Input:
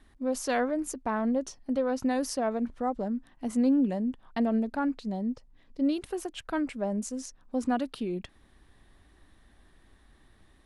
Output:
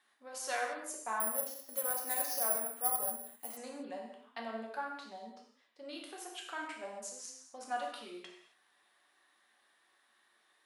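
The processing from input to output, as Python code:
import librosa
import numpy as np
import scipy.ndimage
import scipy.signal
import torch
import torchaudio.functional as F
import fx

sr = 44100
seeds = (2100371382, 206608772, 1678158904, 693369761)

y = scipy.signal.sosfilt(scipy.signal.butter(2, 830.0, 'highpass', fs=sr, output='sos'), x)
y = fx.rev_gated(y, sr, seeds[0], gate_ms=300, shape='falling', drr_db=-1.5)
y = fx.resample_bad(y, sr, factor=4, down='filtered', up='zero_stuff', at=(1.2, 3.57))
y = F.gain(torch.from_numpy(y), -6.5).numpy()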